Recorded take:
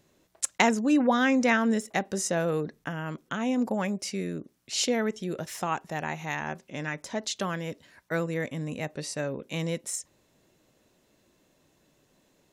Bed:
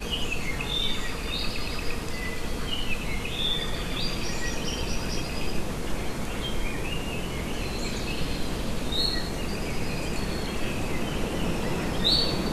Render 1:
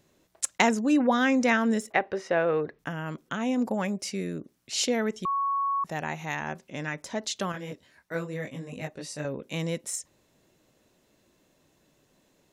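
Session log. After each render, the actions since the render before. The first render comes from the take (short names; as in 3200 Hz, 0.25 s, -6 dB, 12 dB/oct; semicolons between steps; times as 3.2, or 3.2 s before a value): 1.92–2.79 EQ curve 120 Hz 0 dB, 200 Hz -10 dB, 380 Hz +3 dB, 2300 Hz +5 dB, 5300 Hz -11 dB, 7500 Hz -26 dB; 5.25–5.84 bleep 1110 Hz -24 dBFS; 7.52–9.25 detuned doubles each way 27 cents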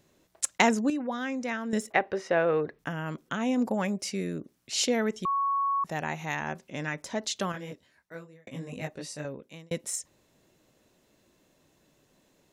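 0.9–1.73 gain -9.5 dB; 7.43–8.47 fade out; 9–9.71 fade out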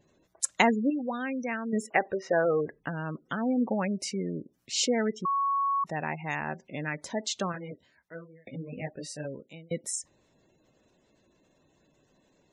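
spectral gate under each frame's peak -20 dB strong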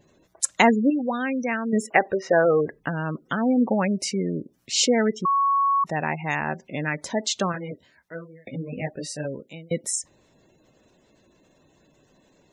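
gain +6.5 dB; limiter -2 dBFS, peak gain reduction 2.5 dB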